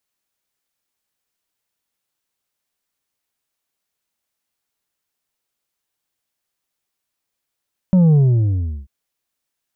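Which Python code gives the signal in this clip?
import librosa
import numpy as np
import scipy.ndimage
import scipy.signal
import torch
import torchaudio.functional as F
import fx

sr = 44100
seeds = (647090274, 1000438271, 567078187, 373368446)

y = fx.sub_drop(sr, level_db=-9.5, start_hz=190.0, length_s=0.94, drive_db=5.0, fade_s=0.74, end_hz=65.0)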